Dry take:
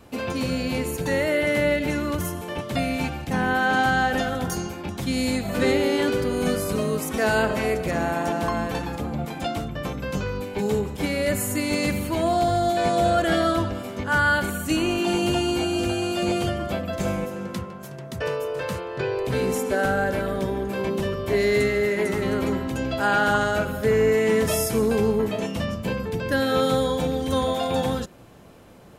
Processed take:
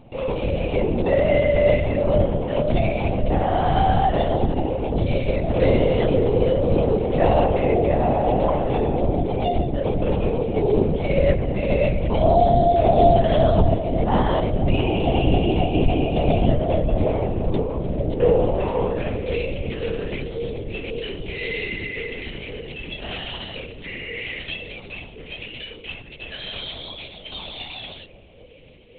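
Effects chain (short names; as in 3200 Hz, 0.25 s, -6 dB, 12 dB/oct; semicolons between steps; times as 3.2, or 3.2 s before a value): reverse; upward compressor, threshold -35 dBFS; reverse; high-pass sweep 72 Hz -> 2500 Hz, 17.11–19.41; in parallel at -8 dB: bit-crush 6-bit; on the sum: air absorption 270 m; fixed phaser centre 590 Hz, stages 4; analogue delay 0.533 s, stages 2048, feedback 85%, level -6.5 dB; LPC vocoder at 8 kHz whisper; gain +3.5 dB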